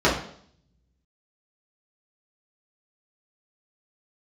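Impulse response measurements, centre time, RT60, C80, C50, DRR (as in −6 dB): 33 ms, 0.60 s, 10.0 dB, 6.5 dB, −8.0 dB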